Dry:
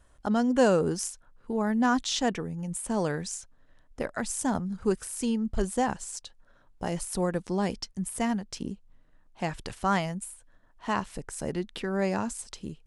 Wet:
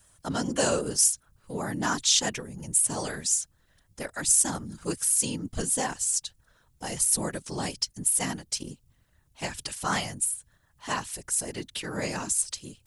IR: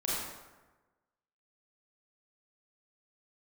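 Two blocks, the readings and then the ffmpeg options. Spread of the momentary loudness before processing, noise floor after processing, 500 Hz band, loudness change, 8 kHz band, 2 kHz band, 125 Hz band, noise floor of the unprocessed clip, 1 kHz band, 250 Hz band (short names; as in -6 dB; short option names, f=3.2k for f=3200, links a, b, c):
13 LU, -66 dBFS, -5.0 dB, +3.0 dB, +13.0 dB, +0.5 dB, -2.5 dB, -60 dBFS, -3.0 dB, -6.5 dB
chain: -af "crystalizer=i=7.5:c=0,afftfilt=real='hypot(re,im)*cos(2*PI*random(0))':imag='hypot(re,im)*sin(2*PI*random(1))':win_size=512:overlap=0.75"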